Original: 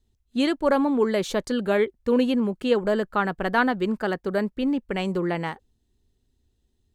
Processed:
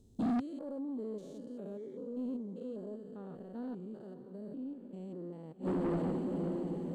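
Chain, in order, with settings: spectrogram pixelated in time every 200 ms; on a send: echo that smears into a reverb 566 ms, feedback 52%, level -15 dB; on the sum: inverted gate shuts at -28 dBFS, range -31 dB; graphic EQ 125/250/500/2000/8000 Hz +10/+10/+10/-11/+7 dB; saturation -32.5 dBFS, distortion -7 dB; trim +3.5 dB

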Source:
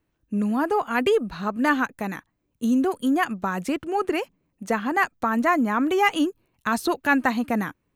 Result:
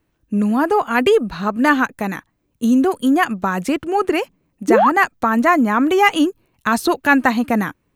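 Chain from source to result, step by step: painted sound rise, 4.68–4.90 s, 270–1400 Hz -19 dBFS; trim +6.5 dB

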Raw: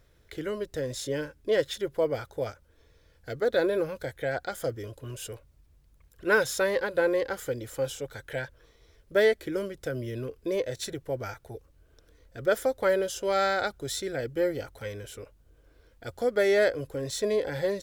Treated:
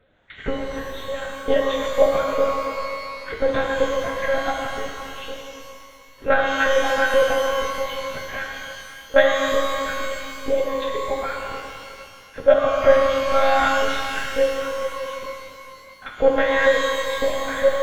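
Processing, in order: LFO high-pass saw up 2.1 Hz 400–1900 Hz; monotone LPC vocoder at 8 kHz 270 Hz; pitch-shifted reverb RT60 2.4 s, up +12 st, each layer -8 dB, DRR -0.5 dB; trim +3.5 dB

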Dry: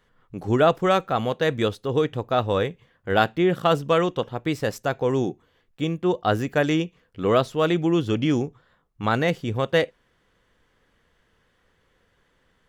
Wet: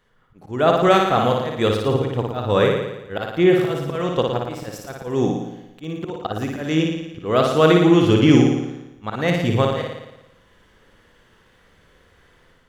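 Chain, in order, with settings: level rider gain up to 8 dB; slow attack 297 ms; flutter echo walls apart 9.8 m, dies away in 0.95 s

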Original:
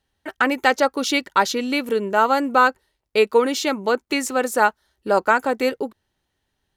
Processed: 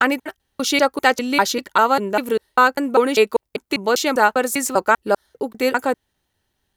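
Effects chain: slices played last to first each 198 ms, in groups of 3; treble shelf 9.8 kHz +8 dB; trim +1.5 dB

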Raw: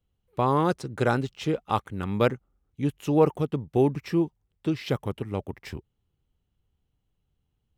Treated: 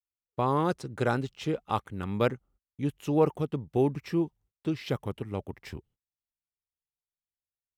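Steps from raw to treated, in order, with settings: gate -55 dBFS, range -31 dB; trim -3.5 dB

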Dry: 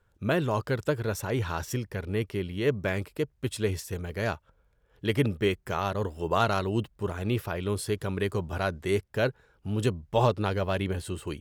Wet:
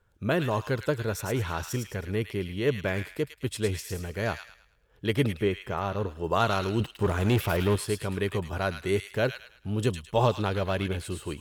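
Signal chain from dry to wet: 5.29–6.24 s: treble shelf 2.6 kHz -9.5 dB; 6.80–7.76 s: waveshaping leveller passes 2; feedback echo behind a high-pass 107 ms, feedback 35%, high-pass 2 kHz, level -4 dB

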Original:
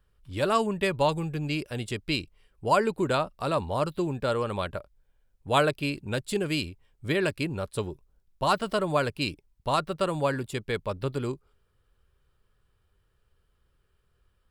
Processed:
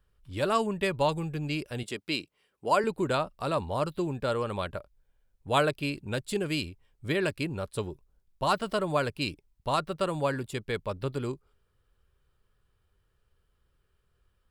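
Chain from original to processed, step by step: 1.83–2.84 s: high-pass 210 Hz 12 dB/octave; trim -2 dB

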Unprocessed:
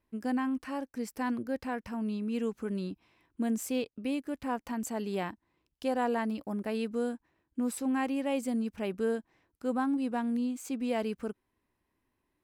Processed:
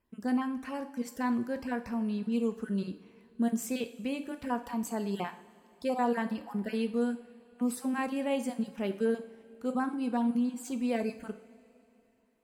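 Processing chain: random holes in the spectrogram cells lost 21%; two-slope reverb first 0.52 s, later 3.3 s, from -18 dB, DRR 7.5 dB

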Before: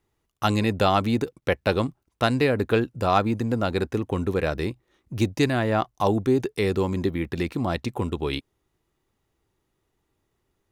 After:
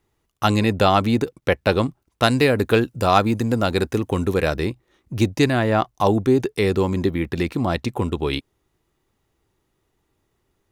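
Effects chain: 2.22–4.57 s: treble shelf 4.6 kHz +8 dB; trim +4 dB

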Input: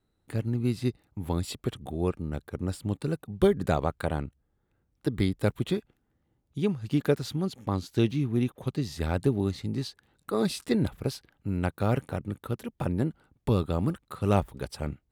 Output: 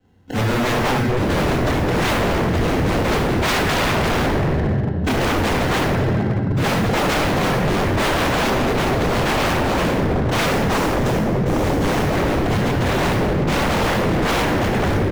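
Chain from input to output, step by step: sample-and-hold 37×; time-frequency box 10.46–11.98 s, 260–5000 Hz -6 dB; in parallel at -1.5 dB: level held to a coarse grid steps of 14 dB; on the sum: early reflections 23 ms -18 dB, 74 ms -13.5 dB; saturation -25 dBFS, distortion -7 dB; reverberation RT60 3.5 s, pre-delay 3 ms, DRR -9 dB; dynamic bell 1.8 kHz, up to +5 dB, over -40 dBFS, Q 1.7; wavefolder -13.5 dBFS

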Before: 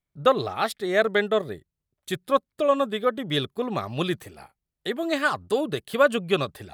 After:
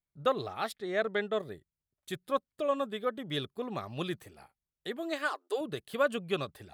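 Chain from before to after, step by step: 0.75–1.33 s: distance through air 59 m; 4.99–5.61 s: brick-wall FIR high-pass 280 Hz; trim -9 dB

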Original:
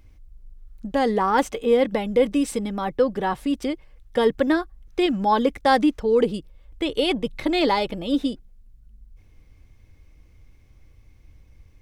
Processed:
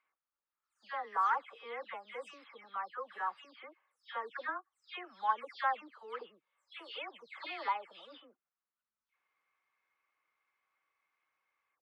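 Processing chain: delay that grows with frequency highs early, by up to 242 ms; ladder band-pass 1.4 kHz, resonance 50%

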